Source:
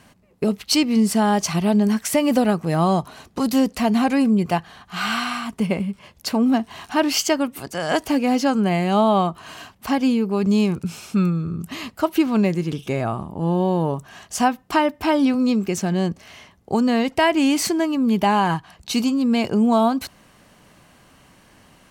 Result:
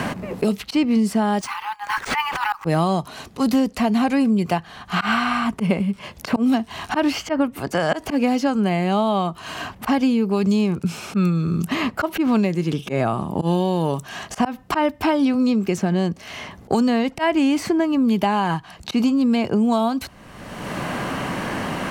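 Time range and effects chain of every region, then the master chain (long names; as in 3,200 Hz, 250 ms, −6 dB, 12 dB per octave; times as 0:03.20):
0:01.41–0:02.65: compressor whose output falls as the input rises −19 dBFS, ratio −0.5 + linear-phase brick-wall high-pass 780 Hz + bad sample-rate conversion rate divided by 3×, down none, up hold
whole clip: high-shelf EQ 4,900 Hz −5 dB; volume swells 128 ms; multiband upward and downward compressor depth 100%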